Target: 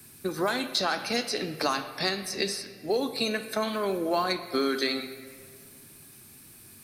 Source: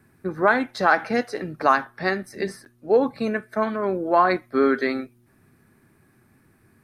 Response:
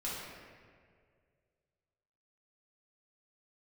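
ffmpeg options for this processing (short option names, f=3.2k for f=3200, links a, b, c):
-filter_complex "[0:a]aexciter=amount=3.7:drive=9.5:freq=2.7k,acrossover=split=240|5400[a][b][c];[a]acompressor=threshold=-42dB:ratio=4[d];[b]acompressor=threshold=-28dB:ratio=4[e];[c]acompressor=threshold=-42dB:ratio=4[f];[d][e][f]amix=inputs=3:normalize=0,asplit=2[g][h];[1:a]atrim=start_sample=2205,lowpass=3.5k,highshelf=f=2.6k:g=11.5[i];[h][i]afir=irnorm=-1:irlink=0,volume=-12.5dB[j];[g][j]amix=inputs=2:normalize=0"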